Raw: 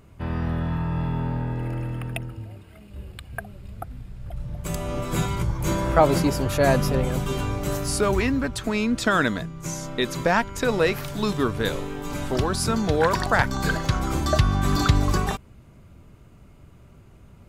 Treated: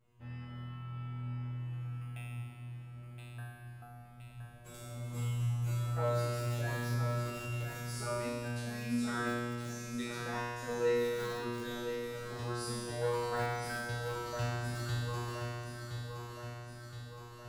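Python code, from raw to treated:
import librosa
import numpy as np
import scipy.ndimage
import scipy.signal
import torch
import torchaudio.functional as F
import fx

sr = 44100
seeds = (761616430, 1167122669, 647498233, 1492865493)

p1 = fx.comb_fb(x, sr, f0_hz=120.0, decay_s=1.8, harmonics='all', damping=0.0, mix_pct=100)
p2 = p1 + fx.echo_feedback(p1, sr, ms=1019, feedback_pct=59, wet_db=-7.0, dry=0)
p3 = fx.echo_crushed(p2, sr, ms=349, feedback_pct=80, bits=6, wet_db=-14.0)
y = p3 * librosa.db_to_amplitude(3.5)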